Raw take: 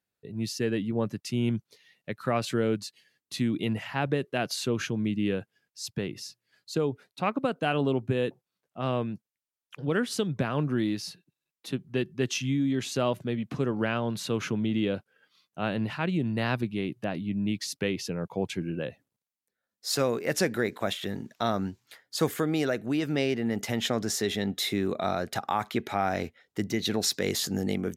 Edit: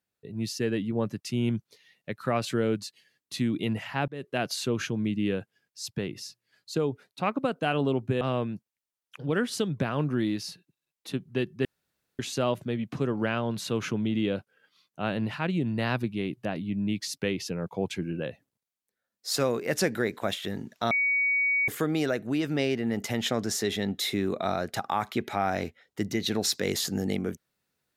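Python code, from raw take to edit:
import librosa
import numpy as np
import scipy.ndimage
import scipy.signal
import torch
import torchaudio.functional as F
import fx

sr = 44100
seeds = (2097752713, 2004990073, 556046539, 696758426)

y = fx.edit(x, sr, fx.fade_in_span(start_s=4.08, length_s=0.27),
    fx.cut(start_s=8.21, length_s=0.59),
    fx.room_tone_fill(start_s=12.24, length_s=0.54),
    fx.bleep(start_s=21.5, length_s=0.77, hz=2250.0, db=-22.0), tone=tone)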